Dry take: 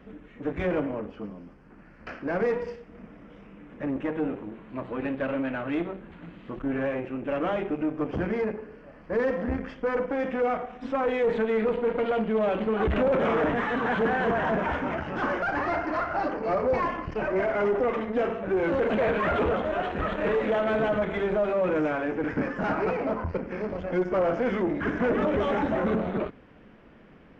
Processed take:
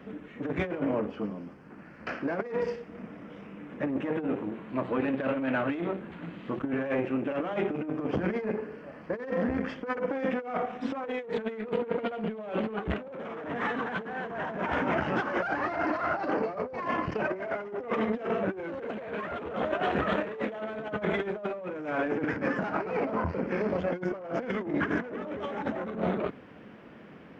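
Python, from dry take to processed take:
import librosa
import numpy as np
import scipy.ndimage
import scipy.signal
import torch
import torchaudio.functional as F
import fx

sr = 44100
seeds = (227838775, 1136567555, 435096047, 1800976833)

y = scipy.signal.sosfilt(scipy.signal.butter(2, 110.0, 'highpass', fs=sr, output='sos'), x)
y = fx.over_compress(y, sr, threshold_db=-30.0, ratio=-0.5)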